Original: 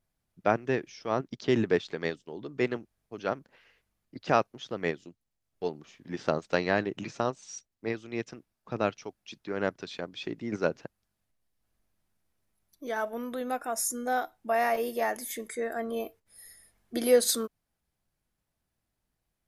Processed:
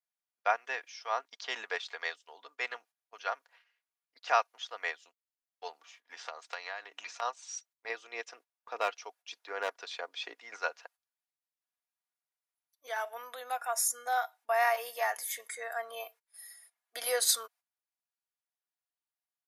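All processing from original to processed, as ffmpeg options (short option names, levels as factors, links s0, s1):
-filter_complex "[0:a]asettb=1/sr,asplit=3[s0][s1][s2];[s0]atrim=end=5.724[s3];[s1]atrim=start=5.72:end=7.22,asetpts=PTS-STARTPTS,afade=t=in:d=0.004:c=qsin,afade=t=out:st=1.496:d=0.004:c=qsin,bandreject=f=96.56:t=h:w=4,bandreject=f=193.12:t=h:w=4,bandreject=f=289.68:t=h:w=4,acompressor=threshold=0.0282:ratio=6:attack=3.2:release=140:knee=1:detection=peak[s4];[s2]atrim=start=7.216[s5];[s3][s4]acrossfade=d=0.004:c1=hsin:c2=qsin[s6];[s6][s5]acrossfade=d=0.004:c1=qsin:c2=hsin,asettb=1/sr,asplit=3[s7][s8][s9];[s7]atrim=end=7.894[s10];[s8]atrim=start=7.89:end=10.35,asetpts=PTS-STARTPTS,afade=t=in:d=0.004:c=qsin,afade=t=out:st=2.456:d=0.004:c=qsin,equalizer=f=360:t=o:w=1.5:g=10.5,volume=4.47,asoftclip=hard,volume=0.224[s11];[s9]atrim=start=10.346[s12];[s10][s11]acrossfade=d=0.004:c1=hsin:c2=qsin[s13];[s13][s12]acrossfade=d=0.004:c1=qsin:c2=hsin,highpass=f=750:w=0.5412,highpass=f=750:w=1.3066,agate=range=0.224:threshold=0.00112:ratio=16:detection=peak,aecho=1:1:4.2:0.46"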